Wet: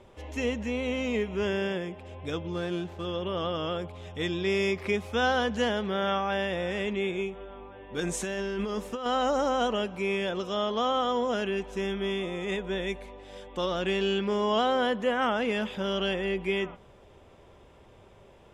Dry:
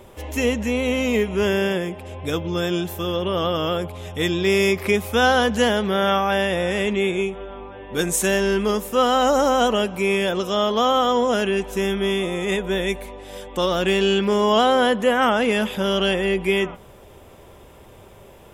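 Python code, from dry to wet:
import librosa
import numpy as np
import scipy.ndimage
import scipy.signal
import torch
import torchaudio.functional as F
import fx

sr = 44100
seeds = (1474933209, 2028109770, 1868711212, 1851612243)

y = fx.median_filter(x, sr, points=9, at=(2.52, 3.05))
y = scipy.signal.sosfilt(scipy.signal.butter(2, 5900.0, 'lowpass', fs=sr, output='sos'), y)
y = fx.over_compress(y, sr, threshold_db=-23.0, ratio=-1.0, at=(8.0, 9.06))
y = y * librosa.db_to_amplitude(-8.5)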